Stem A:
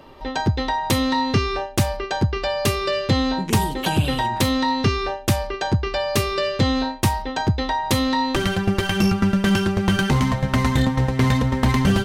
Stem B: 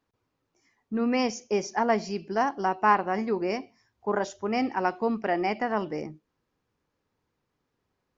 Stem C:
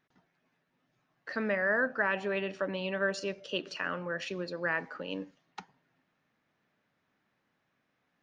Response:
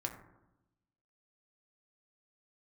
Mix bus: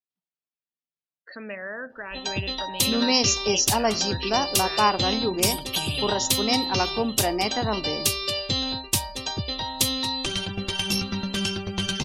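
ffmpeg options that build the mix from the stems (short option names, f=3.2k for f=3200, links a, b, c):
-filter_complex "[0:a]adelay=1900,volume=-11dB,asplit=2[a][b];[b]volume=-10.5dB[c];[1:a]equalizer=f=2.2k:w=1.5:g=-4,adelay=1950,volume=1dB[d];[2:a]alimiter=limit=-21.5dB:level=0:latency=1:release=252,lowpass=4.7k,volume=-3.5dB[e];[c]aecho=0:1:1107:1[f];[a][d][e][f]amix=inputs=4:normalize=0,afftdn=nr=29:nf=-48,aexciter=amount=7.3:drive=1.1:freq=2.6k"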